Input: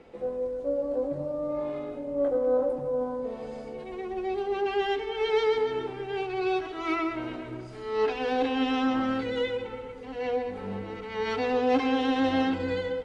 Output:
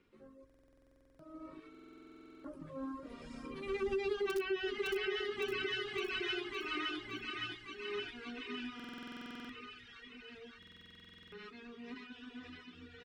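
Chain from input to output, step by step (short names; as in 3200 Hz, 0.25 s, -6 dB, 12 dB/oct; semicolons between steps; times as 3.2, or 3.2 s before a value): Doppler pass-by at 4.26, 21 m/s, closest 4 m; notches 50/100/150/200/250/300/350/400 Hz; thin delay 0.567 s, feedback 71%, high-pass 1700 Hz, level -3.5 dB; in parallel at -11 dB: wrapped overs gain 22 dB; on the sum: band shelf 660 Hz -15.5 dB 1.1 oct; on a send: feedback echo 0.561 s, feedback 45%, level -9 dB; on the sum: compressor 8:1, threshold -42 dBFS, peak gain reduction 16.5 dB; reverb removal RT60 1.7 s; stuck buffer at 0.45/1.7/8.75/10.58, samples 2048, times 15; gain +11.5 dB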